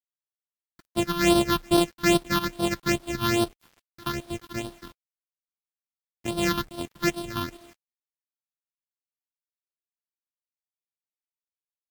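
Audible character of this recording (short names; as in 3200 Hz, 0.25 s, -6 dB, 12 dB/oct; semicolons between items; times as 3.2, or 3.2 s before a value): a buzz of ramps at a fixed pitch in blocks of 128 samples; phasing stages 6, 2.4 Hz, lowest notch 550–2000 Hz; a quantiser's noise floor 10-bit, dither none; Vorbis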